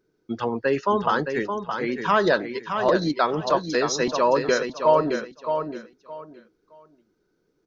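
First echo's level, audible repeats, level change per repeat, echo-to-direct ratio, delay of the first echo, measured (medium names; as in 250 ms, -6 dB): -7.0 dB, 3, -13.0 dB, -7.0 dB, 618 ms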